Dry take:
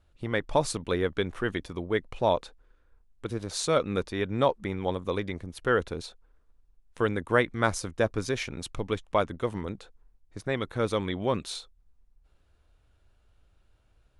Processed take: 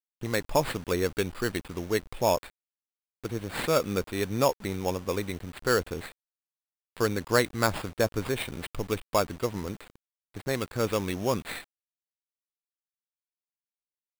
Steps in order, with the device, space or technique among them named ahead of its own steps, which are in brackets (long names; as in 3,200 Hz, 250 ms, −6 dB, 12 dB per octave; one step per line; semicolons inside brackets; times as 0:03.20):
early 8-bit sampler (sample-rate reduction 6,000 Hz, jitter 0%; bit reduction 8 bits)